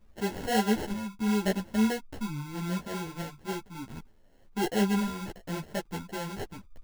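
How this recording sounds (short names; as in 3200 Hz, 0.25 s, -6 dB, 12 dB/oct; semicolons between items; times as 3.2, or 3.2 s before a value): phasing stages 8, 0.73 Hz, lowest notch 480–4400 Hz; aliases and images of a low sample rate 1200 Hz, jitter 0%; a shimmering, thickened sound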